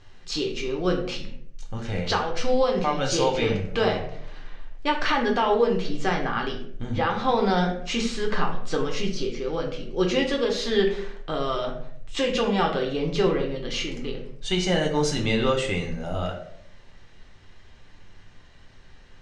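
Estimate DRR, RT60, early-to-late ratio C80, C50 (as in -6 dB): 0.5 dB, 0.70 s, 10.0 dB, 7.5 dB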